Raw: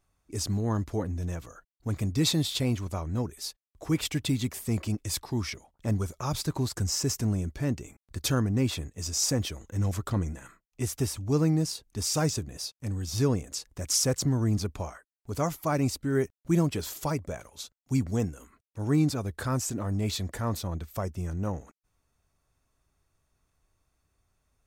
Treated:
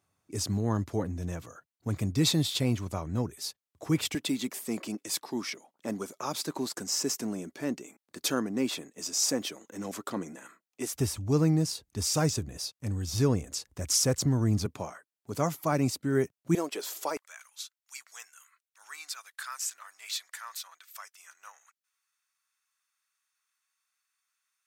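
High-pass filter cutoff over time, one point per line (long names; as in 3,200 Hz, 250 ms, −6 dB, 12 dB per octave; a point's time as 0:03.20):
high-pass filter 24 dB per octave
92 Hz
from 0:04.15 220 Hz
from 0:10.94 56 Hz
from 0:14.66 120 Hz
from 0:16.55 360 Hz
from 0:17.17 1,300 Hz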